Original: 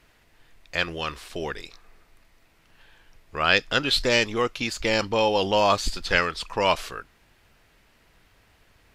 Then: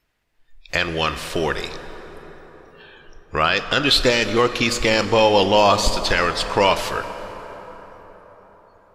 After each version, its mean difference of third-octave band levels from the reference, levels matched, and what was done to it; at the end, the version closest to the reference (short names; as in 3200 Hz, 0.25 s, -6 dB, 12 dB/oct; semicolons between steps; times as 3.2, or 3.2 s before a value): 5.5 dB: spectral noise reduction 23 dB; in parallel at +0.5 dB: compressor, threshold -32 dBFS, peak gain reduction 17 dB; on the sum: limiter -9.5 dBFS, peak gain reduction 8 dB; plate-style reverb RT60 4.9 s, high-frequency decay 0.5×, DRR 9.5 dB; gain +5 dB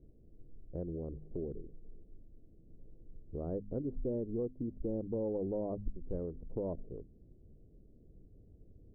17.5 dB: Wiener smoothing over 41 samples; inverse Chebyshev low-pass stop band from 2700 Hz, stop band 80 dB; de-hum 51.03 Hz, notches 5; compressor 2:1, threshold -48 dBFS, peak gain reduction 14.5 dB; gain +5 dB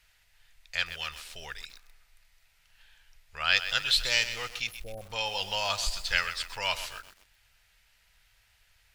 8.5 dB: passive tone stack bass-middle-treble 10-0-10; spectral delete 4.67–5.09, 780–9900 Hz; notch 1100 Hz, Q 7.7; lo-fi delay 0.128 s, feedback 55%, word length 7-bit, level -11 dB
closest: first